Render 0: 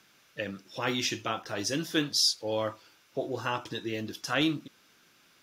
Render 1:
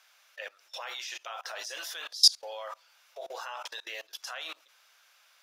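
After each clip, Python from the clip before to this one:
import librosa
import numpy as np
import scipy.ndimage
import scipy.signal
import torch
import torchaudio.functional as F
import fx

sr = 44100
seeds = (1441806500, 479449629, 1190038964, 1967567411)

y = scipy.signal.sosfilt(scipy.signal.butter(6, 590.0, 'highpass', fs=sr, output='sos'), x)
y = fx.level_steps(y, sr, step_db=24)
y = y * librosa.db_to_amplitude(8.5)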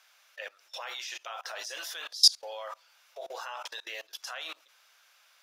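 y = x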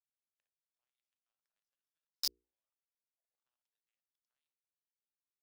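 y = fx.power_curve(x, sr, exponent=3.0)
y = fx.hum_notches(y, sr, base_hz=60, count=8)
y = y * librosa.db_to_amplitude(-7.5)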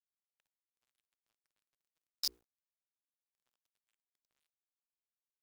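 y = fx.law_mismatch(x, sr, coded='mu')
y = y * librosa.db_to_amplitude(-1.5)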